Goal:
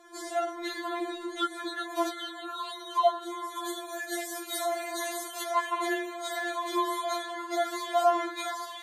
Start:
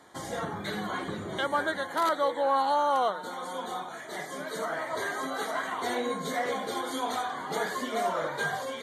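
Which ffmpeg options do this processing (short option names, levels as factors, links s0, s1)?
-filter_complex "[0:a]asettb=1/sr,asplit=3[s0][s1][s2];[s0]atrim=end=3.564[s3];[s1]atrim=start=3.56:end=5.43,asetpts=PTS-STARTPTS,afade=t=in:d=0.004:c=qsin,afade=t=out:st=1.866:d=0.004:c=qsin,aemphasis=mode=production:type=50kf[s4];[s2]atrim=start=5.426[s5];[s3][s4]acrossfade=d=0.004:c1=hsin:c2=qsin[s6];[s6][s5]acrossfade=d=0.004:c1=qsin:c2=hsin,afftfilt=real='re*4*eq(mod(b,16),0)':imag='im*4*eq(mod(b,16),0)':win_size=2048:overlap=0.75,volume=1.41"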